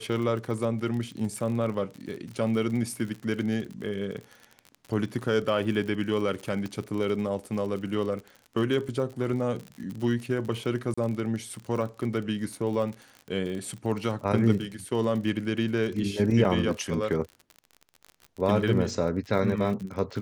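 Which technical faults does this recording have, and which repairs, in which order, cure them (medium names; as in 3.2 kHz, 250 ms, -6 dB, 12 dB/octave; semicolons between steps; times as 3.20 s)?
crackle 44 per s -34 dBFS
6.66 s: pop -23 dBFS
10.94–10.97 s: dropout 35 ms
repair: de-click; interpolate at 10.94 s, 35 ms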